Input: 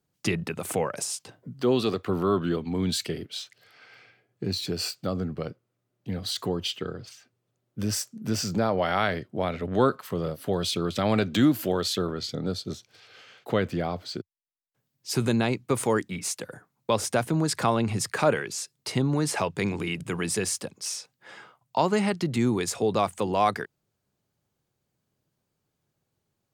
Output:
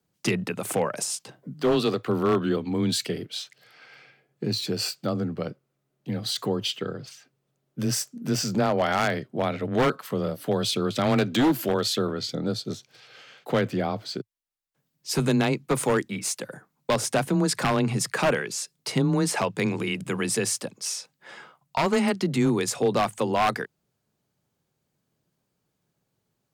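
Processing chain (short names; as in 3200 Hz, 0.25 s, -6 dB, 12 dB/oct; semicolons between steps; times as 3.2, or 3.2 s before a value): frequency shift +17 Hz; wavefolder -16.5 dBFS; gain +2 dB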